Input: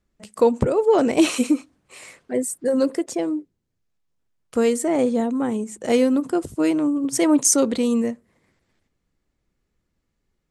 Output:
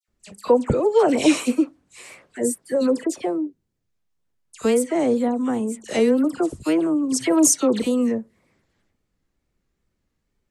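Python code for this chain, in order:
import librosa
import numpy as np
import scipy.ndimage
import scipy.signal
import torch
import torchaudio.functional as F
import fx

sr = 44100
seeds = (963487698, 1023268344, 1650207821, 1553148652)

y = fx.wow_flutter(x, sr, seeds[0], rate_hz=2.1, depth_cents=97.0)
y = fx.dispersion(y, sr, late='lows', ms=82.0, hz=2000.0)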